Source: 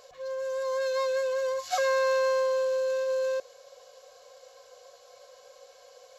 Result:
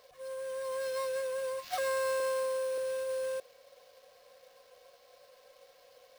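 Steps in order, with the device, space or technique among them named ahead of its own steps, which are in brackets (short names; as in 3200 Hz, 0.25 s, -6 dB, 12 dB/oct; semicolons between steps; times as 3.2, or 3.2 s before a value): early companding sampler (sample-rate reducer 9400 Hz, jitter 0%; companded quantiser 6-bit); 2.2–2.78 HPF 160 Hz 24 dB/oct; gain -6.5 dB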